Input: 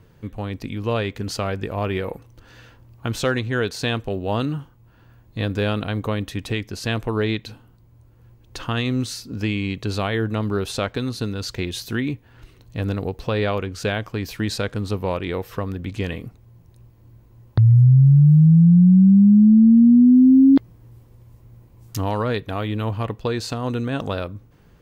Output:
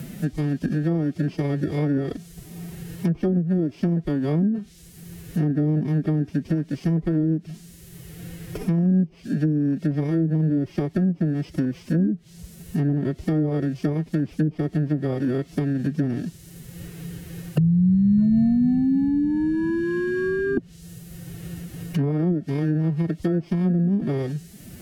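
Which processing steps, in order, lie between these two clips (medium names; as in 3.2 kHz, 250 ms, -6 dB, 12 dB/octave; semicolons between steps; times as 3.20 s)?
bit-reversed sample order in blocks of 32 samples; graphic EQ 250/1000/4000/8000 Hz +11/-11/-3/-6 dB; compressor with a negative ratio -8 dBFS, ratio -0.5; added noise violet -35 dBFS; formant-preserving pitch shift +6.5 st; low-pass that closes with the level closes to 420 Hz, closed at -11 dBFS; three bands compressed up and down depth 70%; trim -4.5 dB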